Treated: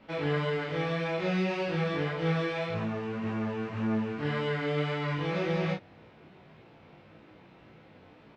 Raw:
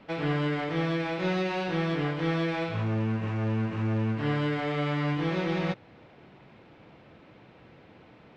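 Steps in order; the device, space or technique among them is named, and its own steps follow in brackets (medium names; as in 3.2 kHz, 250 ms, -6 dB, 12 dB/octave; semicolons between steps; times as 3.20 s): double-tracked vocal (doubling 32 ms -3 dB; chorus 1.8 Hz, delay 18 ms, depth 2.8 ms)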